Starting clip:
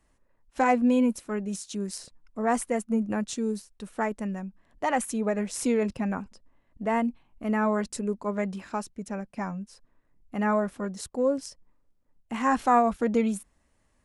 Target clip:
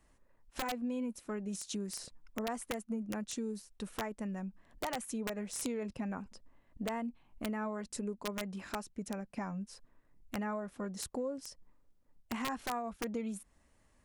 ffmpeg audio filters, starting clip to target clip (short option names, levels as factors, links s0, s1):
-af "acompressor=threshold=0.0158:ratio=5,aeval=exprs='(mod(23.7*val(0)+1,2)-1)/23.7':c=same"